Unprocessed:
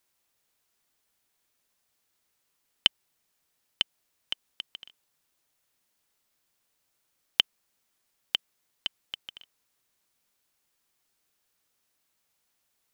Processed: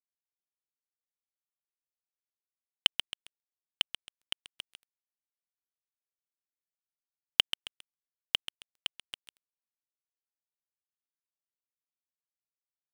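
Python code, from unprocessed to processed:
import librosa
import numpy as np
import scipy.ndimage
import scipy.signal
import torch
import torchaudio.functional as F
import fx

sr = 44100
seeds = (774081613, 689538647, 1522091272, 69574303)

y = fx.echo_feedback(x, sr, ms=135, feedback_pct=50, wet_db=-10)
y = np.sign(y) * np.maximum(np.abs(y) - 10.0 ** (-30.5 / 20.0), 0.0)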